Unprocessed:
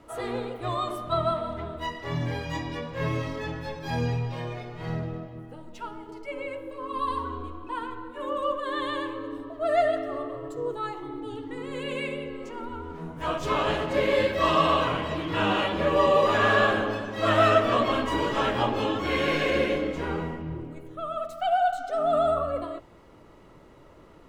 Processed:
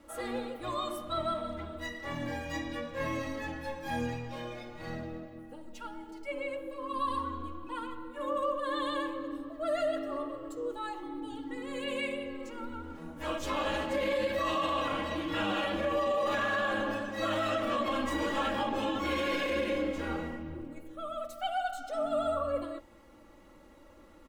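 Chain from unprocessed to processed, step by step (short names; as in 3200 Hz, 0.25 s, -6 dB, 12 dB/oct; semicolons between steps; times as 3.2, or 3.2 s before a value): high shelf 6500 Hz +8 dB; comb 3.6 ms, depth 79%; limiter -16 dBFS, peak gain reduction 10 dB; gain -6.5 dB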